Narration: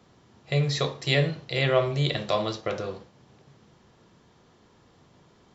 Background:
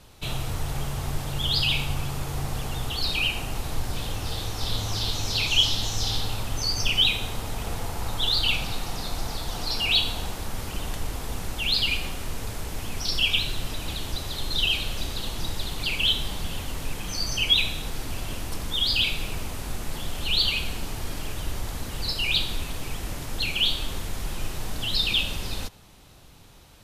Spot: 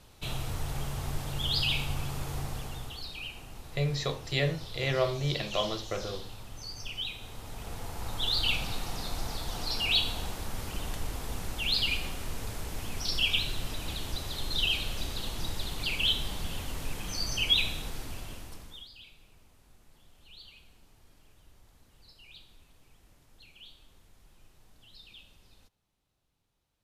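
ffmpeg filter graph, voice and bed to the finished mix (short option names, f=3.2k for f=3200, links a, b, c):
-filter_complex "[0:a]adelay=3250,volume=-5.5dB[a];[1:a]volume=6dB,afade=t=out:st=2.33:d=0.76:silence=0.298538,afade=t=in:st=7.16:d=1.33:silence=0.281838,afade=t=out:st=17.71:d=1.18:silence=0.0630957[b];[a][b]amix=inputs=2:normalize=0"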